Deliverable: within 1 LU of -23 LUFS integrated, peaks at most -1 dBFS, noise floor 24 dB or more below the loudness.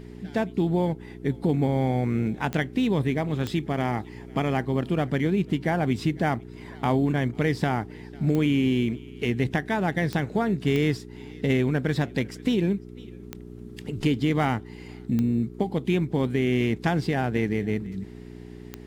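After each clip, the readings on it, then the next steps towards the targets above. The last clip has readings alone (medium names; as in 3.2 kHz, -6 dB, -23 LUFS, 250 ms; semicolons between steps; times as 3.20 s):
clicks found 8; hum 60 Hz; highest harmonic 420 Hz; hum level -41 dBFS; loudness -26.0 LUFS; peak level -9.0 dBFS; loudness target -23.0 LUFS
-> de-click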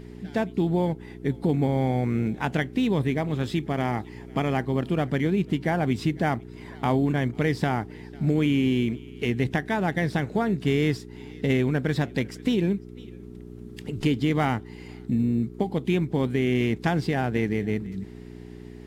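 clicks found 0; hum 60 Hz; highest harmonic 420 Hz; hum level -41 dBFS
-> de-hum 60 Hz, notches 7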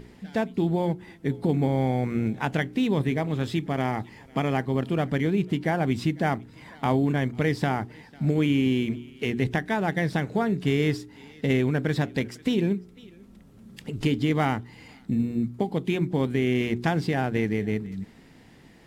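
hum not found; loudness -26.5 LUFS; peak level -9.5 dBFS; loudness target -23.0 LUFS
-> trim +3.5 dB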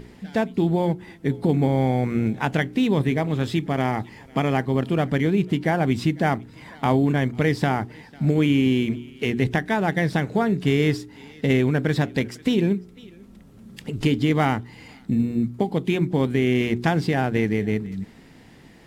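loudness -23.0 LUFS; peak level -6.0 dBFS; noise floor -48 dBFS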